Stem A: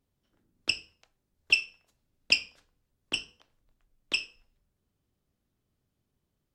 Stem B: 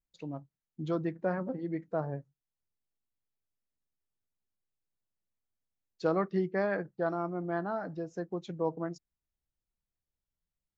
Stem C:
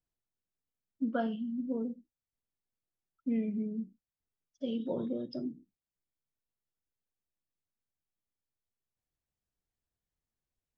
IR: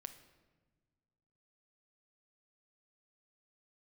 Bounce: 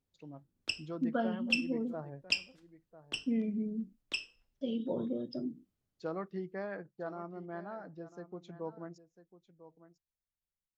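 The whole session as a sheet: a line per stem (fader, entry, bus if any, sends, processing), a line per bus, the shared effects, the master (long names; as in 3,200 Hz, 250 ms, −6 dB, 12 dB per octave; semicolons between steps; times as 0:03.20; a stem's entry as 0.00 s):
−7.5 dB, 0.00 s, no send, no echo send, no processing
−9.5 dB, 0.00 s, no send, echo send −15 dB, no processing
−0.5 dB, 0.00 s, no send, no echo send, noise gate with hold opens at −57 dBFS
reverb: not used
echo: single-tap delay 998 ms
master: no processing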